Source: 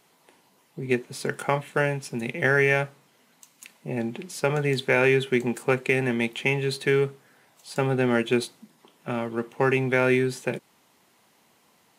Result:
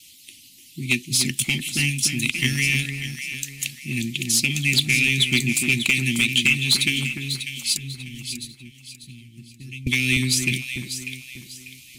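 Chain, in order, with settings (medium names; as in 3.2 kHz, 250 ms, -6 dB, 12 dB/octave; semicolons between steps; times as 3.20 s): gate with hold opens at -58 dBFS; inverse Chebyshev band-stop 420–1600 Hz, stop band 40 dB; 7.77–9.87 s: amplifier tone stack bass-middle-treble 10-0-1; harmonic-percussive split percussive +9 dB; peaking EQ 180 Hz -15 dB 1 oct; compression 2:1, threshold -28 dBFS, peak gain reduction 6 dB; sine folder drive 12 dB, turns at -6.5 dBFS; echo whose repeats swap between lows and highs 297 ms, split 1.8 kHz, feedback 57%, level -4.5 dB; trim -3.5 dB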